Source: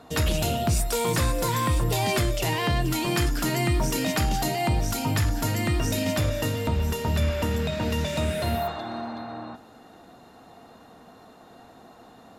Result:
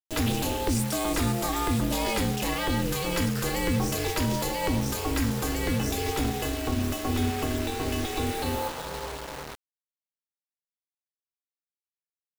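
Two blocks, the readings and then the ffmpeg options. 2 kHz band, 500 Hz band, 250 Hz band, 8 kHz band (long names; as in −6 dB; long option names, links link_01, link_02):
−2.5 dB, −2.5 dB, +0.5 dB, −1.5 dB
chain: -af "aeval=exprs='val(0)*sin(2*PI*170*n/s)':channel_layout=same,acrusher=bits=5:mix=0:aa=0.000001"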